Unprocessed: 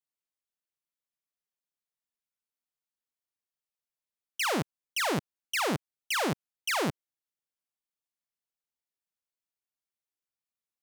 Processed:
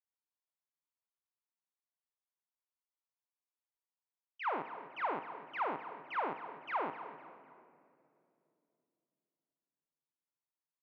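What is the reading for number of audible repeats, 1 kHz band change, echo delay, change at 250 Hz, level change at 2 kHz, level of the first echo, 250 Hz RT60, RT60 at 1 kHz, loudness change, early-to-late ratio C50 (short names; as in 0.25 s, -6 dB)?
3, -2.0 dB, 0.254 s, -14.5 dB, -10.5 dB, -13.5 dB, 3.8 s, 2.2 s, -8.5 dB, 9.0 dB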